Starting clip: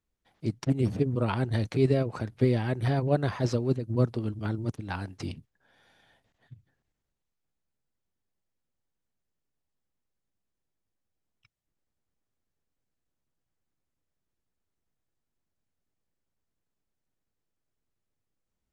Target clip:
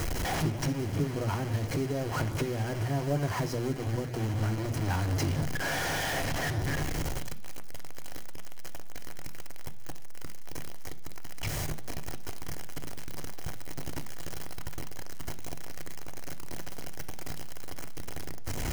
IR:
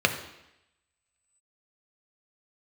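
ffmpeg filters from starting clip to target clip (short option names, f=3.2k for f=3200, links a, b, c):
-filter_complex "[0:a]aeval=exprs='val(0)+0.5*0.0531*sgn(val(0))':c=same,lowshelf=f=300:g=6.5,acompressor=threshold=-25dB:ratio=16,acrusher=bits=6:mix=0:aa=0.000001,asplit=2[a][b];[1:a]atrim=start_sample=2205,asetrate=61740,aresample=44100[c];[b][c]afir=irnorm=-1:irlink=0,volume=-14dB[d];[a][d]amix=inputs=2:normalize=0,volume=-3dB"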